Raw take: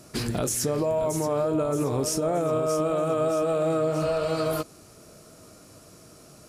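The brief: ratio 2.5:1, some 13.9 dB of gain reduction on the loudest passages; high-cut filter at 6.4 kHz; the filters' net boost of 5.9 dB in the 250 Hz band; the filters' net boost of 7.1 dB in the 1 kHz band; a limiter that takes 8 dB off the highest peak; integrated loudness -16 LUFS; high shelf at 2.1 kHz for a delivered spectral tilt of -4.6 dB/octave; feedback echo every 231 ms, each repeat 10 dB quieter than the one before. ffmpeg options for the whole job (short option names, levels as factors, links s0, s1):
-af "lowpass=6400,equalizer=f=250:t=o:g=7.5,equalizer=f=1000:t=o:g=7,highshelf=f=2100:g=8,acompressor=threshold=0.0112:ratio=2.5,alimiter=level_in=2:limit=0.0631:level=0:latency=1,volume=0.501,aecho=1:1:231|462|693|924:0.316|0.101|0.0324|0.0104,volume=13.3"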